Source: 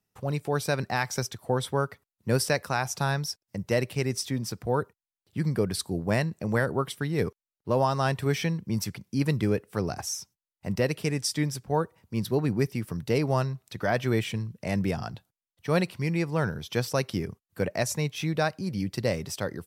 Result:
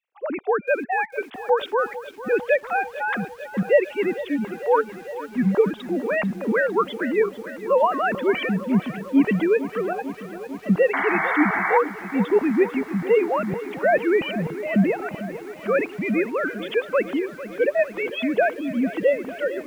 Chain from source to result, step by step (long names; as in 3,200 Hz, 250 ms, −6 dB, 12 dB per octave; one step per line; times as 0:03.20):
three sine waves on the formant tracks
sound drawn into the spectrogram noise, 0:10.93–0:11.78, 640–2,300 Hz −29 dBFS
feedback echo at a low word length 449 ms, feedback 80%, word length 8 bits, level −14.5 dB
level +5.5 dB